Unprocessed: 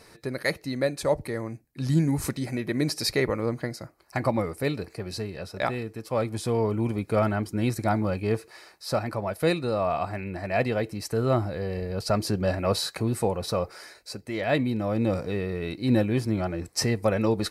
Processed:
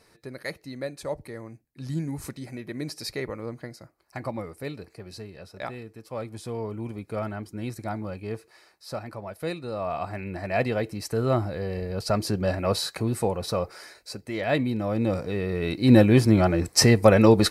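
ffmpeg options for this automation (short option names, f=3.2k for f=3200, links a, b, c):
-af "volume=8dB,afade=t=in:st=9.61:d=0.72:silence=0.421697,afade=t=in:st=15.34:d=0.78:silence=0.398107"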